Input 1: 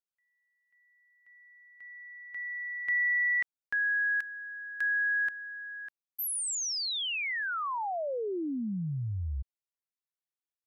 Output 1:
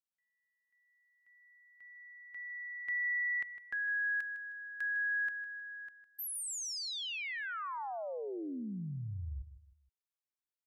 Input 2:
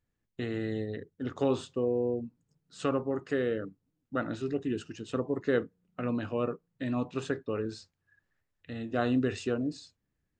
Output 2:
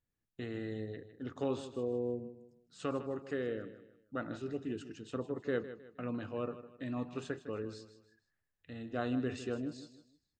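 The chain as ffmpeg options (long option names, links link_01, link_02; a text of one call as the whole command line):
ffmpeg -i in.wav -af "aecho=1:1:156|312|468:0.224|0.0784|0.0274,volume=-7dB" out.wav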